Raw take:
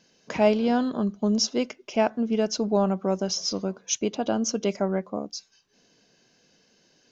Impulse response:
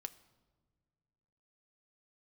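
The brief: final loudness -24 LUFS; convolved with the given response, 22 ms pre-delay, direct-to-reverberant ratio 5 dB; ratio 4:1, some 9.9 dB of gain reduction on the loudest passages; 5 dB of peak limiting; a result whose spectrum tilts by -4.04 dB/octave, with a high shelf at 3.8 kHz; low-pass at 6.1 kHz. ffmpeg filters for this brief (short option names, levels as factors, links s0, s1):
-filter_complex "[0:a]lowpass=6100,highshelf=f=3800:g=3,acompressor=threshold=0.0447:ratio=4,alimiter=limit=0.0794:level=0:latency=1,asplit=2[s0][s1];[1:a]atrim=start_sample=2205,adelay=22[s2];[s1][s2]afir=irnorm=-1:irlink=0,volume=0.891[s3];[s0][s3]amix=inputs=2:normalize=0,volume=2.37"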